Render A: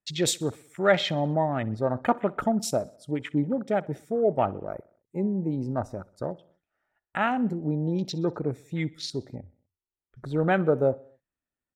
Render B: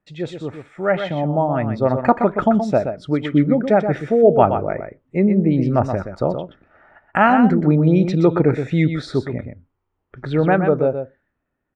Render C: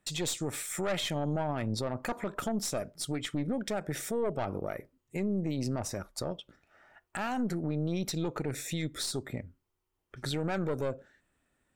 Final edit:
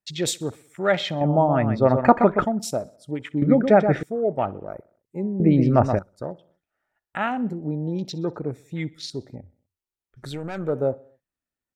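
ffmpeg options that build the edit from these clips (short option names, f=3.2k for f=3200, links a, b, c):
-filter_complex "[1:a]asplit=3[a][b][c];[0:a]asplit=5[d][e][f][g][h];[d]atrim=end=1.212[i];[a]atrim=start=1.208:end=2.452[j];[e]atrim=start=2.448:end=3.422[k];[b]atrim=start=3.418:end=4.032[l];[f]atrim=start=4.028:end=5.402[m];[c]atrim=start=5.398:end=5.992[n];[g]atrim=start=5.988:end=10.39[o];[2:a]atrim=start=10.15:end=10.79[p];[h]atrim=start=10.55[q];[i][j]acrossfade=d=0.004:c1=hsin:c2=hsin[r];[r][k]acrossfade=d=0.004:c1=hsin:c2=hsin[s];[s][l]acrossfade=d=0.004:c1=hsin:c2=hsin[t];[t][m]acrossfade=d=0.004:c1=hsin:c2=hsin[u];[u][n]acrossfade=d=0.004:c1=hsin:c2=hsin[v];[v][o]acrossfade=d=0.004:c1=hsin:c2=hsin[w];[w][p]acrossfade=d=0.24:c1=tri:c2=tri[x];[x][q]acrossfade=d=0.24:c1=tri:c2=tri"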